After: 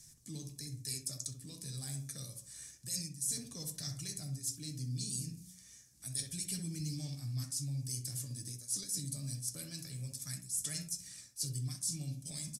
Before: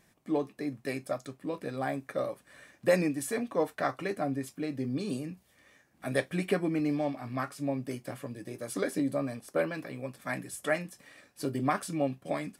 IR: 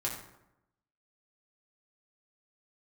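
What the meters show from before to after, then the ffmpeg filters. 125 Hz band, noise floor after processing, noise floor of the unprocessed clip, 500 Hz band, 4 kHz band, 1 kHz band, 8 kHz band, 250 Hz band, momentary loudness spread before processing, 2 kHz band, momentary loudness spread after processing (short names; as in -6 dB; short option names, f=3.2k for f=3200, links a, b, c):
-0.5 dB, -58 dBFS, -68 dBFS, -28.5 dB, +4.0 dB, under -25 dB, +9.0 dB, -14.5 dB, 10 LU, -20.5 dB, 10 LU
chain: -filter_complex "[0:a]lowpass=9.9k,equalizer=f=2.9k:t=o:w=0.67:g=-3.5,acrossover=split=180|3000[a][b][c];[b]acompressor=threshold=-47dB:ratio=3[d];[a][d][c]amix=inputs=3:normalize=0,bandreject=f=91.05:t=h:w=4,bandreject=f=182.1:t=h:w=4,bandreject=f=273.15:t=h:w=4,bandreject=f=364.2:t=h:w=4,bandreject=f=455.25:t=h:w=4,bandreject=f=546.3:t=h:w=4,bandreject=f=637.35:t=h:w=4,bandreject=f=728.4:t=h:w=4,bandreject=f=819.45:t=h:w=4,bandreject=f=910.5:t=h:w=4,bandreject=f=1.00155k:t=h:w=4,bandreject=f=1.0926k:t=h:w=4,bandreject=f=1.18365k:t=h:w=4,bandreject=f=1.2747k:t=h:w=4,bandreject=f=1.36575k:t=h:w=4,bandreject=f=1.4568k:t=h:w=4,bandreject=f=1.54785k:t=h:w=4,bandreject=f=1.6389k:t=h:w=4,bandreject=f=1.72995k:t=h:w=4,bandreject=f=1.821k:t=h:w=4,bandreject=f=1.91205k:t=h:w=4,bandreject=f=2.0031k:t=h:w=4,bandreject=f=2.09415k:t=h:w=4,bandreject=f=2.1852k:t=h:w=4,bandreject=f=2.27625k:t=h:w=4,bandreject=f=2.3673k:t=h:w=4,bandreject=f=2.45835k:t=h:w=4,bandreject=f=2.5494k:t=h:w=4,bandreject=f=2.64045k:t=h:w=4,bandreject=f=2.7315k:t=h:w=4,bandreject=f=2.82255k:t=h:w=4,bandreject=f=2.9136k:t=h:w=4,bandreject=f=3.00465k:t=h:w=4,bandreject=f=3.0957k:t=h:w=4,bandreject=f=3.18675k:t=h:w=4,bandreject=f=3.2778k:t=h:w=4,bandreject=f=3.36885k:t=h:w=4,bandreject=f=3.4599k:t=h:w=4,bandreject=f=3.55095k:t=h:w=4,aphaser=in_gain=1:out_gain=1:delay=4.9:decay=0.23:speed=0.28:type=sinusoidal,firequalizer=gain_entry='entry(130,0);entry(210,-13);entry(590,-23);entry(5600,13)':delay=0.05:min_phase=1,asplit=2[e][f];[f]adelay=65,lowpass=f=1.1k:p=1,volume=-4dB,asplit=2[g][h];[h]adelay=65,lowpass=f=1.1k:p=1,volume=0.44,asplit=2[i][j];[j]adelay=65,lowpass=f=1.1k:p=1,volume=0.44,asplit=2[k][l];[l]adelay=65,lowpass=f=1.1k:p=1,volume=0.44,asplit=2[m][n];[n]adelay=65,lowpass=f=1.1k:p=1,volume=0.44,asplit=2[o][p];[p]adelay=65,lowpass=f=1.1k:p=1,volume=0.44[q];[e][g][i][k][m][o][q]amix=inputs=7:normalize=0,areverse,acompressor=threshold=-39dB:ratio=6,areverse,volume=4.5dB"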